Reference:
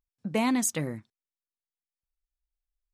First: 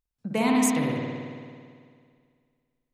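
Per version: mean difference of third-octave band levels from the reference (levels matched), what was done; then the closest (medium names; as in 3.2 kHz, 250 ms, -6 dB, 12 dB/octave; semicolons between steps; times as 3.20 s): 7.0 dB: spring tank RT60 2.1 s, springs 55 ms, chirp 25 ms, DRR -2 dB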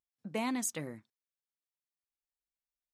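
1.0 dB: high-pass 190 Hz 6 dB/octave; trim -7 dB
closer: second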